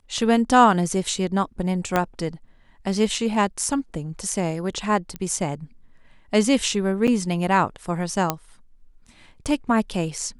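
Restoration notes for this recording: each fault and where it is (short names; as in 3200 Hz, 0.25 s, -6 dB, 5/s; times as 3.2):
1.96 pop -7 dBFS
5.16 pop -16 dBFS
7.07–7.08 gap 6.9 ms
8.3 pop -5 dBFS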